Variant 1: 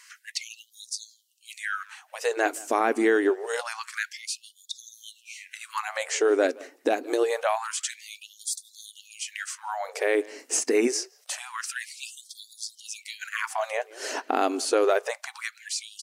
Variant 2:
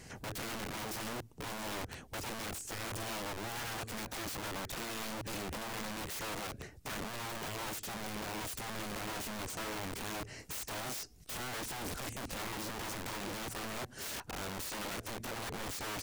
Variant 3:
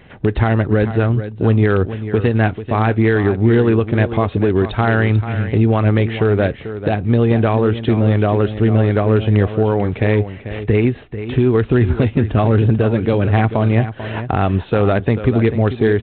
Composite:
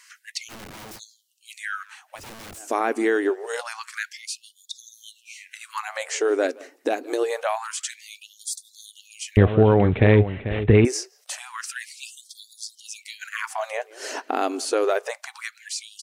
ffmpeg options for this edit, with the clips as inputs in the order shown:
-filter_complex "[1:a]asplit=2[a][b];[0:a]asplit=4[c][d][e][f];[c]atrim=end=0.52[g];[a]atrim=start=0.48:end=1[h];[d]atrim=start=0.96:end=2.24[i];[b]atrim=start=2.14:end=2.64[j];[e]atrim=start=2.54:end=9.372[k];[2:a]atrim=start=9.368:end=10.852[l];[f]atrim=start=10.848[m];[g][h]acrossfade=d=0.04:c1=tri:c2=tri[n];[n][i]acrossfade=d=0.04:c1=tri:c2=tri[o];[o][j]acrossfade=d=0.1:c1=tri:c2=tri[p];[p][k]acrossfade=d=0.1:c1=tri:c2=tri[q];[q][l]acrossfade=d=0.004:c1=hsin:c2=hsin[r];[r][m]acrossfade=d=0.004:c1=hsin:c2=hsin"

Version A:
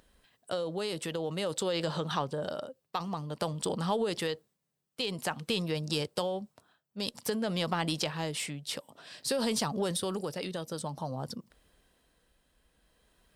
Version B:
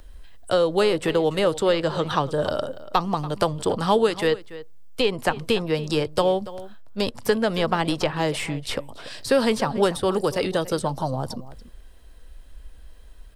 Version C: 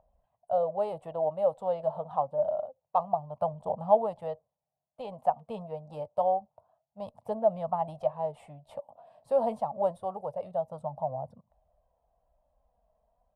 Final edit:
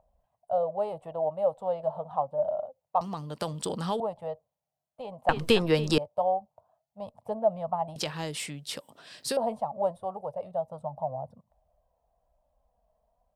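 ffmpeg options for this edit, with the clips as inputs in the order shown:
-filter_complex "[0:a]asplit=2[a][b];[2:a]asplit=4[c][d][e][f];[c]atrim=end=3.012[g];[a]atrim=start=3.008:end=4.002[h];[d]atrim=start=3.998:end=5.292[i];[1:a]atrim=start=5.288:end=5.982[j];[e]atrim=start=5.978:end=7.962[k];[b]atrim=start=7.958:end=9.372[l];[f]atrim=start=9.368[m];[g][h]acrossfade=d=0.004:c1=hsin:c2=hsin[n];[n][i]acrossfade=d=0.004:c1=hsin:c2=hsin[o];[o][j]acrossfade=d=0.004:c1=hsin:c2=hsin[p];[p][k]acrossfade=d=0.004:c1=hsin:c2=hsin[q];[q][l]acrossfade=d=0.004:c1=hsin:c2=hsin[r];[r][m]acrossfade=d=0.004:c1=hsin:c2=hsin"

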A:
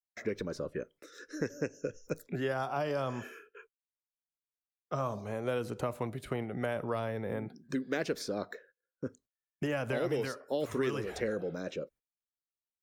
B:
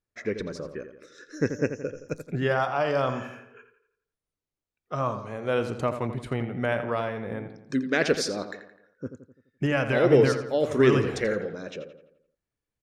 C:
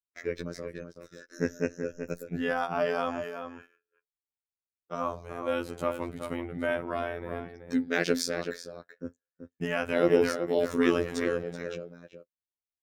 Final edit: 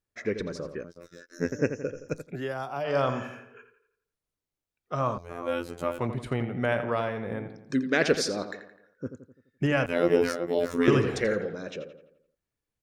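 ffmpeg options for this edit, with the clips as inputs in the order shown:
-filter_complex "[2:a]asplit=3[a][b][c];[1:a]asplit=5[d][e][f][g][h];[d]atrim=end=0.842[i];[a]atrim=start=0.838:end=1.522[j];[e]atrim=start=1.518:end=2.35[k];[0:a]atrim=start=2.19:end=2.95[l];[f]atrim=start=2.79:end=5.182[m];[b]atrim=start=5.178:end=5.992[n];[g]atrim=start=5.988:end=9.862[o];[c]atrim=start=9.858:end=10.882[p];[h]atrim=start=10.878[q];[i][j]acrossfade=d=0.004:c1=hsin:c2=hsin[r];[r][k]acrossfade=d=0.004:c1=hsin:c2=hsin[s];[s][l]acrossfade=d=0.16:c1=tri:c2=tri[t];[t][m]acrossfade=d=0.16:c1=tri:c2=tri[u];[u][n]acrossfade=d=0.004:c1=hsin:c2=hsin[v];[v][o]acrossfade=d=0.004:c1=hsin:c2=hsin[w];[w][p]acrossfade=d=0.004:c1=hsin:c2=hsin[x];[x][q]acrossfade=d=0.004:c1=hsin:c2=hsin"

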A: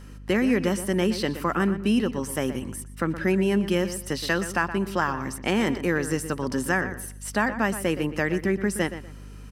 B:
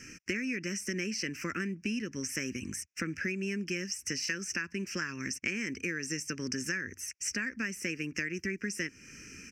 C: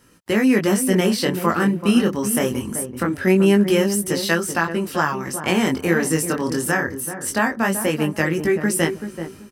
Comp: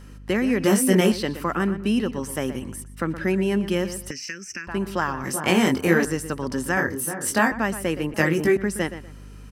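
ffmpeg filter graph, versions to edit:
-filter_complex "[2:a]asplit=4[a][b][c][d];[0:a]asplit=6[e][f][g][h][i][j];[e]atrim=end=0.642[k];[a]atrim=start=0.638:end=1.122[l];[f]atrim=start=1.118:end=4.112[m];[1:a]atrim=start=4.108:end=4.672[n];[g]atrim=start=4.668:end=5.242[o];[b]atrim=start=5.238:end=6.052[p];[h]atrim=start=6.048:end=6.772[q];[c]atrim=start=6.768:end=7.522[r];[i]atrim=start=7.518:end=8.142[s];[d]atrim=start=8.138:end=8.572[t];[j]atrim=start=8.568[u];[k][l]acrossfade=d=0.004:c1=hsin:c2=hsin[v];[v][m]acrossfade=d=0.004:c1=hsin:c2=hsin[w];[w][n]acrossfade=d=0.004:c1=hsin:c2=hsin[x];[x][o]acrossfade=d=0.004:c1=hsin:c2=hsin[y];[y][p]acrossfade=d=0.004:c1=hsin:c2=hsin[z];[z][q]acrossfade=d=0.004:c1=hsin:c2=hsin[aa];[aa][r]acrossfade=d=0.004:c1=hsin:c2=hsin[ab];[ab][s]acrossfade=d=0.004:c1=hsin:c2=hsin[ac];[ac][t]acrossfade=d=0.004:c1=hsin:c2=hsin[ad];[ad][u]acrossfade=d=0.004:c1=hsin:c2=hsin"

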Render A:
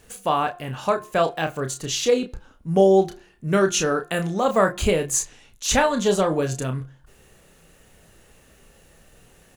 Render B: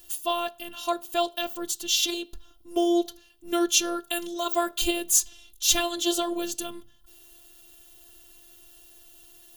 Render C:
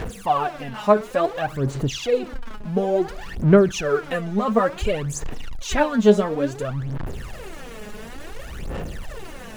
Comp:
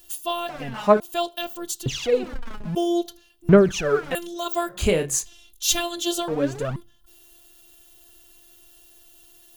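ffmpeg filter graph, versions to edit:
-filter_complex "[2:a]asplit=4[a][b][c][d];[1:a]asplit=6[e][f][g][h][i][j];[e]atrim=end=0.492[k];[a]atrim=start=0.488:end=1.002[l];[f]atrim=start=0.998:end=1.862[m];[b]atrim=start=1.858:end=2.752[n];[g]atrim=start=2.748:end=3.492[o];[c]atrim=start=3.488:end=4.152[p];[h]atrim=start=4.148:end=4.84[q];[0:a]atrim=start=4.68:end=5.29[r];[i]atrim=start=5.13:end=6.282[s];[d]atrim=start=6.278:end=6.762[t];[j]atrim=start=6.758[u];[k][l]acrossfade=d=0.004:c1=hsin:c2=hsin[v];[v][m]acrossfade=d=0.004:c1=hsin:c2=hsin[w];[w][n]acrossfade=d=0.004:c1=hsin:c2=hsin[x];[x][o]acrossfade=d=0.004:c1=hsin:c2=hsin[y];[y][p]acrossfade=d=0.004:c1=hsin:c2=hsin[z];[z][q]acrossfade=d=0.004:c1=hsin:c2=hsin[aa];[aa][r]acrossfade=d=0.16:c1=tri:c2=tri[ab];[ab][s]acrossfade=d=0.16:c1=tri:c2=tri[ac];[ac][t]acrossfade=d=0.004:c1=hsin:c2=hsin[ad];[ad][u]acrossfade=d=0.004:c1=hsin:c2=hsin"

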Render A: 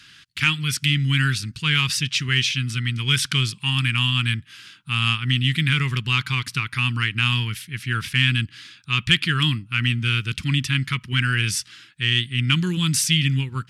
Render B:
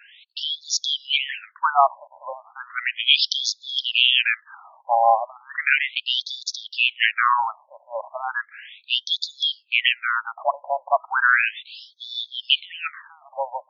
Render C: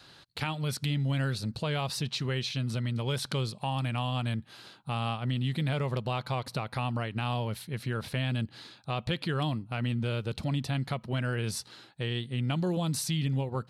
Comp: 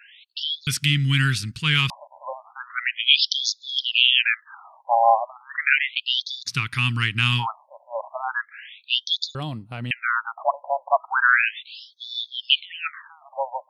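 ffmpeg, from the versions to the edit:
-filter_complex "[0:a]asplit=2[a][b];[1:a]asplit=4[c][d][e][f];[c]atrim=end=0.672[g];[a]atrim=start=0.668:end=1.902[h];[d]atrim=start=1.898:end=6.55[i];[b]atrim=start=6.45:end=7.47[j];[e]atrim=start=7.37:end=9.352[k];[2:a]atrim=start=9.348:end=9.912[l];[f]atrim=start=9.908[m];[g][h]acrossfade=d=0.004:c1=hsin:c2=hsin[n];[n][i]acrossfade=d=0.004:c1=hsin:c2=hsin[o];[o][j]acrossfade=d=0.1:c1=tri:c2=tri[p];[p][k]acrossfade=d=0.1:c1=tri:c2=tri[q];[q][l]acrossfade=d=0.004:c1=hsin:c2=hsin[r];[r][m]acrossfade=d=0.004:c1=hsin:c2=hsin"

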